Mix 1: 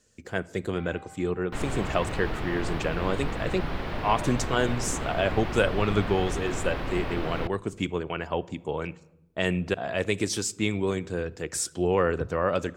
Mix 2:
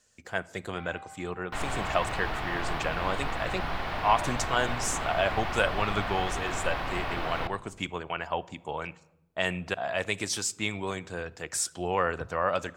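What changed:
second sound: send +10.5 dB
master: add low shelf with overshoot 550 Hz −7 dB, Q 1.5

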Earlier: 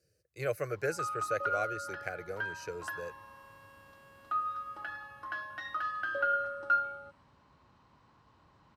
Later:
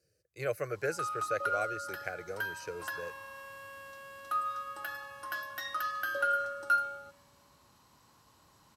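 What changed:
first sound: remove low-pass filter 2,700 Hz 12 dB per octave
second sound +10.0 dB
master: add low-shelf EQ 170 Hz −3.5 dB

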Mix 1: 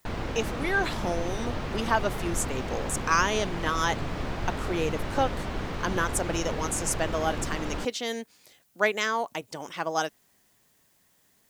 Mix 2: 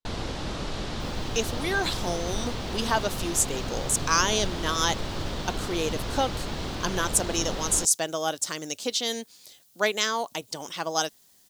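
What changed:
speech: entry +1.00 s
master: add high shelf with overshoot 2,900 Hz +7 dB, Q 1.5

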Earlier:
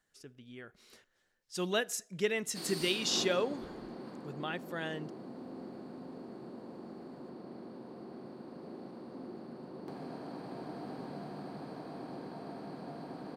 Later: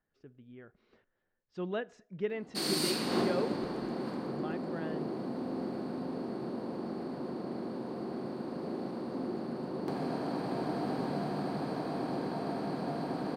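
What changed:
speech: add head-to-tape spacing loss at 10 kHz 45 dB
background +9.0 dB

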